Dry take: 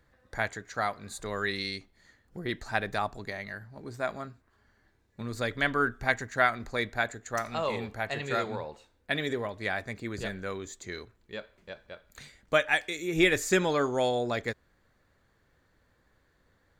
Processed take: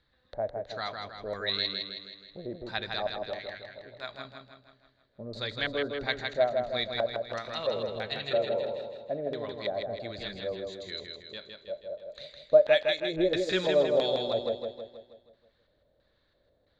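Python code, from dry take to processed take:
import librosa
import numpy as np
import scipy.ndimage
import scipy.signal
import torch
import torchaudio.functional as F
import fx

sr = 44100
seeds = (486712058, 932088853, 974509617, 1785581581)

y = fx.filter_lfo_lowpass(x, sr, shape='square', hz=1.5, low_hz=590.0, high_hz=3900.0, q=7.3)
y = fx.spec_erase(y, sr, start_s=1.14, length_s=0.33, low_hz=2400.0, high_hz=5400.0)
y = fx.peak_eq(y, sr, hz=220.0, db=-9.5, octaves=2.7, at=(3.38, 4.19))
y = fx.echo_feedback(y, sr, ms=160, feedback_pct=51, wet_db=-4.5)
y = y * librosa.db_to_amplitude(-7.5)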